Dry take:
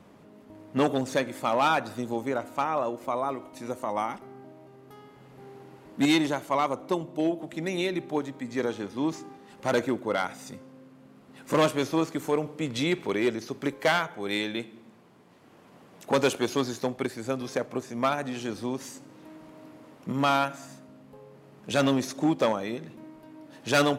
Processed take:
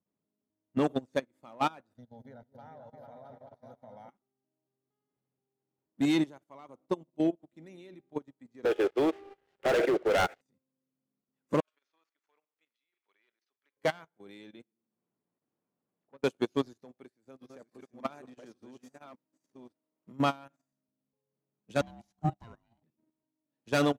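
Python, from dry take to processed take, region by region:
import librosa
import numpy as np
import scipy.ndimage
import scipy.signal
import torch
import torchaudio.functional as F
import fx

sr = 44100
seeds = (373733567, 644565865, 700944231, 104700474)

y = fx.chain(x, sr, fx.low_shelf(hz=310.0, db=6.0),
    fx.fixed_phaser(hz=1700.0, stages=8),
    fx.echo_opening(ms=221, hz=750, octaves=2, feedback_pct=70, wet_db=-3), at=(1.97, 4.09))
y = fx.chain(y, sr, fx.cheby1_bandpass(low_hz=380.0, high_hz=3100.0, order=4),
    fx.peak_eq(hz=1000.0, db=-11.5, octaves=0.37),
    fx.leveller(passes=5), at=(8.65, 10.41))
y = fx.chain(y, sr, fx.highpass(hz=1500.0, slope=12),
    fx.over_compress(threshold_db=-37.0, ratio=-0.5),
    fx.air_absorb(metres=160.0), at=(11.6, 13.77))
y = fx.chain(y, sr, fx.lowpass(hz=2300.0, slope=12),
    fx.low_shelf(hz=140.0, db=-3.0),
    fx.band_squash(depth_pct=70), at=(14.62, 16.24))
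y = fx.chain(y, sr, fx.reverse_delay(ms=577, wet_db=-1.5),
    fx.low_shelf(hz=140.0, db=-9.5), at=(16.85, 20.13))
y = fx.chain(y, sr, fx.ring_mod(carrier_hz=460.0),
    fx.peak_eq(hz=1100.0, db=-4.0, octaves=0.52), at=(21.81, 22.83))
y = fx.peak_eq(y, sr, hz=200.0, db=6.5, octaves=3.0)
y = fx.level_steps(y, sr, step_db=10)
y = fx.upward_expand(y, sr, threshold_db=-42.0, expansion=2.5)
y = y * 10.0 ** (-3.0 / 20.0)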